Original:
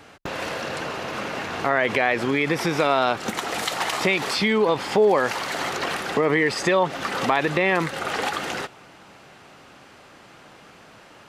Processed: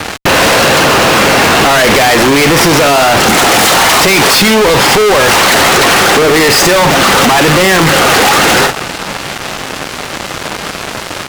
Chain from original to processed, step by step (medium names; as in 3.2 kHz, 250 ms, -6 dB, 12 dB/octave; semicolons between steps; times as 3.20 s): doubling 50 ms -14 dB; fuzz box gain 44 dB, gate -46 dBFS; trim +7 dB